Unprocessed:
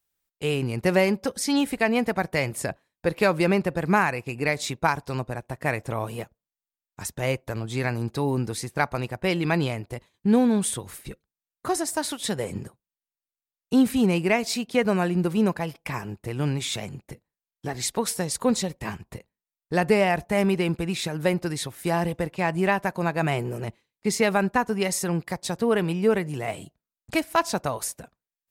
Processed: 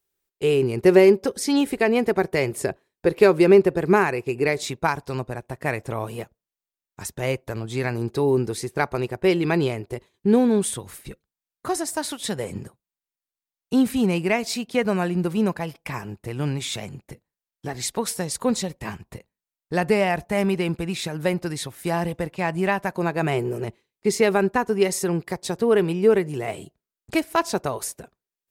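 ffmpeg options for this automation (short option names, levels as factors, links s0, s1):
-af "asetnsamples=n=441:p=0,asendcmd='4.63 equalizer g 4.5;7.94 equalizer g 11;10.62 equalizer g 0.5;22.98 equalizer g 9',equalizer=f=390:t=o:w=0.4:g=14"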